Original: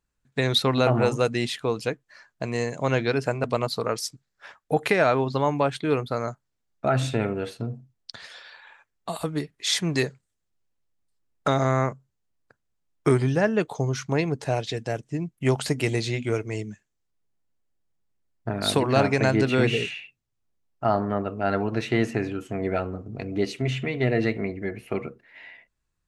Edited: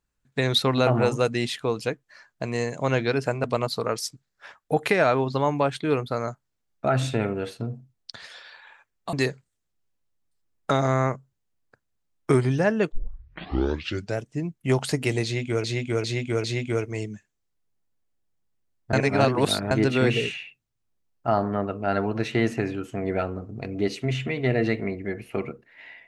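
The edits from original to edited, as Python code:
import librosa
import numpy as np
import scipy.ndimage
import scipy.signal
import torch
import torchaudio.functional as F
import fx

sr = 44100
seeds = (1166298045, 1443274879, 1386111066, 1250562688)

y = fx.edit(x, sr, fx.cut(start_s=9.13, length_s=0.77),
    fx.tape_start(start_s=13.69, length_s=1.29),
    fx.repeat(start_s=16.01, length_s=0.4, count=4),
    fx.reverse_span(start_s=18.5, length_s=0.78), tone=tone)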